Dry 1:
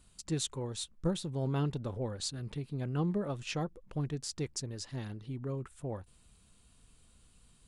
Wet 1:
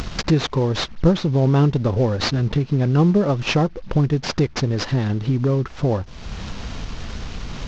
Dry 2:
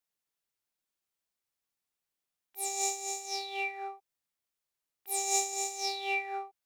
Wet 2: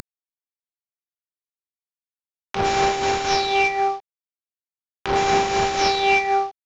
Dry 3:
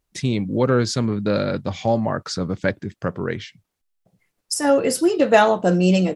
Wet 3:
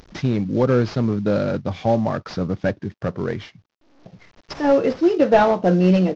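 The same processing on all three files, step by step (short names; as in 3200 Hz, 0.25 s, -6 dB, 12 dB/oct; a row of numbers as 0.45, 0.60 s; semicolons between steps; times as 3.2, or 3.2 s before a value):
CVSD 32 kbps; high shelf 2300 Hz -8.5 dB; upward compressor, threshold -29 dBFS; match loudness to -20 LUFS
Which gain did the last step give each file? +16.5, +16.0, +1.5 dB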